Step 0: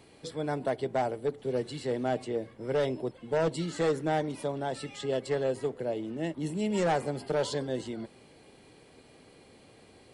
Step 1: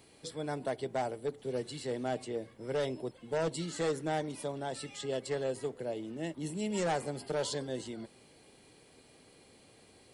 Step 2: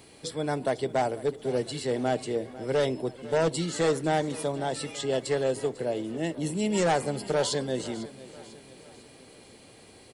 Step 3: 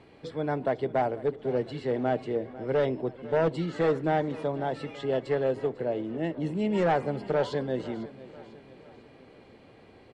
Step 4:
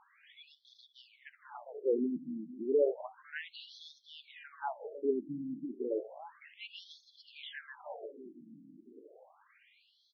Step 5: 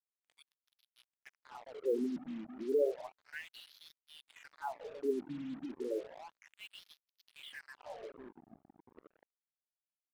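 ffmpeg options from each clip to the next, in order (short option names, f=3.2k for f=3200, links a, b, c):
-af "highshelf=f=4.5k:g=9,volume=-5dB"
-af "aecho=1:1:498|996|1494|1992:0.133|0.0653|0.032|0.0157,volume=7.5dB"
-af "lowpass=2.2k"
-af "afftfilt=real='re*between(b*sr/1024,220*pow(4700/220,0.5+0.5*sin(2*PI*0.32*pts/sr))/1.41,220*pow(4700/220,0.5+0.5*sin(2*PI*0.32*pts/sr))*1.41)':imag='im*between(b*sr/1024,220*pow(4700/220,0.5+0.5*sin(2*PI*0.32*pts/sr))/1.41,220*pow(4700/220,0.5+0.5*sin(2*PI*0.32*pts/sr))*1.41)':win_size=1024:overlap=0.75"
-af "acrusher=bits=7:mix=0:aa=0.5,highshelf=f=4.4k:g=-5.5,volume=-2.5dB"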